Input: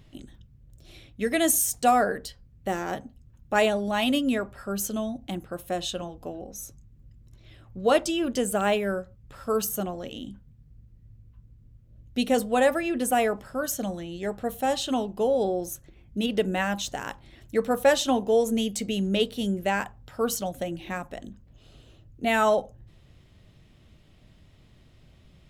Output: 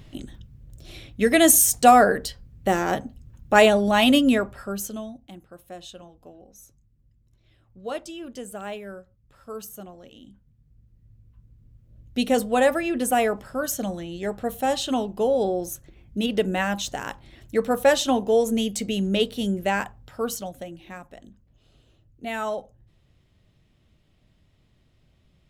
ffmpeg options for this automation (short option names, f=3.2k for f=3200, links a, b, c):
-af "volume=19.5dB,afade=t=out:st=4.23:d=0.57:silence=0.375837,afade=t=out:st=4.8:d=0.47:silence=0.354813,afade=t=in:st=10.2:d=2.04:silence=0.237137,afade=t=out:st=19.8:d=0.94:silence=0.354813"